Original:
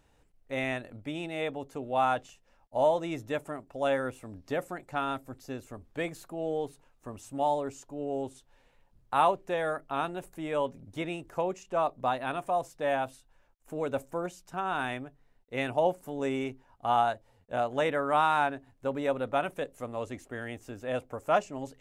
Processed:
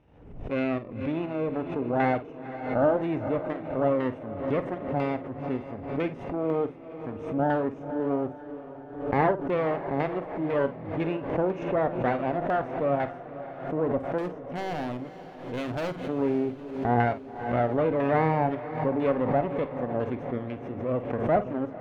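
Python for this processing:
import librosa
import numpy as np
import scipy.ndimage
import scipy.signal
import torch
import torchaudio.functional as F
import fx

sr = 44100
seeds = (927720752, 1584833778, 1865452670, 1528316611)

p1 = fx.lower_of_two(x, sr, delay_ms=0.33)
p2 = fx.highpass(p1, sr, hz=200.0, slope=6)
p3 = fx.low_shelf(p2, sr, hz=260.0, db=10.5)
p4 = fx.level_steps(p3, sr, step_db=18)
p5 = p3 + (p4 * librosa.db_to_amplitude(0.0))
p6 = fx.filter_lfo_lowpass(p5, sr, shape='saw_down', hz=2.0, low_hz=850.0, high_hz=2000.0, q=0.81)
p7 = fx.clip_hard(p6, sr, threshold_db=-28.5, at=(14.18, 16.02))
p8 = fx.doubler(p7, sr, ms=50.0, db=-12.5)
p9 = fx.echo_diffused(p8, sr, ms=516, feedback_pct=57, wet_db=-13.5)
y = fx.pre_swell(p9, sr, db_per_s=74.0)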